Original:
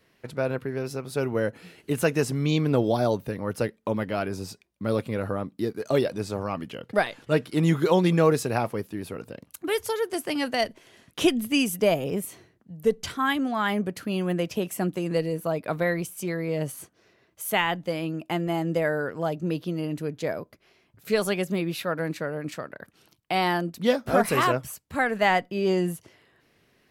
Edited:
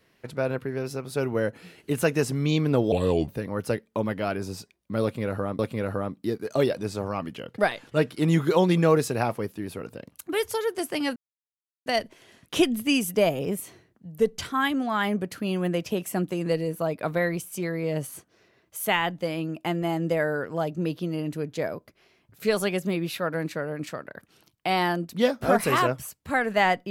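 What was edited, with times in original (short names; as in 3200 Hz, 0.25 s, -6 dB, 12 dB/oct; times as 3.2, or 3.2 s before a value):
2.92–3.19 speed 75%
4.94–5.5 loop, 2 plays
10.51 insert silence 0.70 s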